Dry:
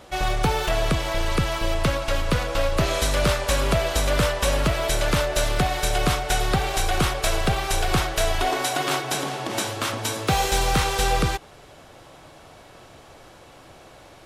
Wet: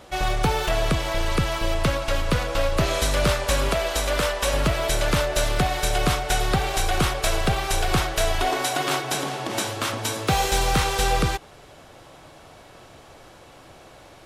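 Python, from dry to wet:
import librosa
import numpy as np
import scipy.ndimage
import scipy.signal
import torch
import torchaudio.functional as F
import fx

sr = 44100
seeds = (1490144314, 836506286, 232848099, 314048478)

y = fx.peak_eq(x, sr, hz=110.0, db=-11.5, octaves=1.7, at=(3.69, 4.54))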